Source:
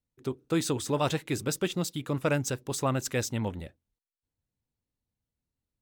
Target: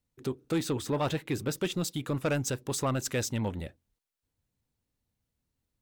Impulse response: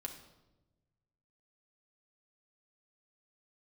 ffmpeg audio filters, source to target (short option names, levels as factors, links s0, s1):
-filter_complex "[0:a]asplit=2[s0][s1];[s1]acompressor=threshold=0.01:ratio=6,volume=1[s2];[s0][s2]amix=inputs=2:normalize=0,asettb=1/sr,asplit=3[s3][s4][s5];[s3]atrim=end=0.584[s6];[s4]atrim=start=0.58:end=1.58,asetpts=PTS-STARTPTS,afade=t=in:d=0.004:c=qsin,afade=t=out:st=0.996:d=0.004:c=qsin,equalizer=f=8000:t=o:w=1.8:g=-7[s7];[s5]atrim=start=1.576[s8];[s6][s7]acrossfade=d=0.004:c1=hsin:c2=qsin[s9];[s9][s8]acrossfade=d=0.004:c1=qsin:c2=hsin,asoftclip=type=tanh:threshold=0.1,volume=0.891"